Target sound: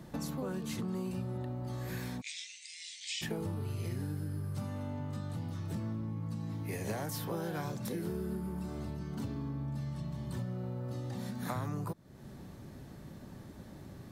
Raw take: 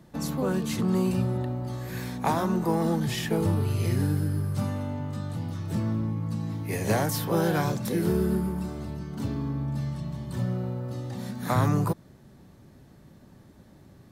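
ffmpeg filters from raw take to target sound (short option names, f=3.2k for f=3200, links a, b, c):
-filter_complex "[0:a]asplit=3[a][b][c];[a]afade=t=out:st=2.2:d=0.02[d];[b]asuperpass=centerf=4400:order=20:qfactor=0.67,afade=t=in:st=2.2:d=0.02,afade=t=out:st=3.21:d=0.02[e];[c]afade=t=in:st=3.21:d=0.02[f];[d][e][f]amix=inputs=3:normalize=0,acompressor=threshold=-41dB:ratio=4,volume=3.5dB"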